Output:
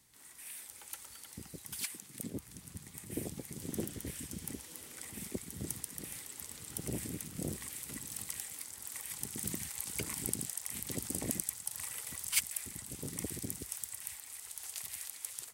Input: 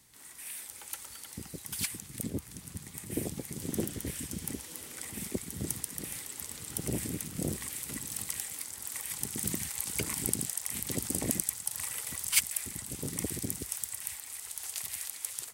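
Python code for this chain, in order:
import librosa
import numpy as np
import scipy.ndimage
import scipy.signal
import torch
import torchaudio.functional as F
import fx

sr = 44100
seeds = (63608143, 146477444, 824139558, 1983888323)

y = fx.highpass(x, sr, hz=fx.line((1.79, 340.0), (2.38, 100.0)), slope=12, at=(1.79, 2.38), fade=0.02)
y = y * 10.0 ** (-5.0 / 20.0)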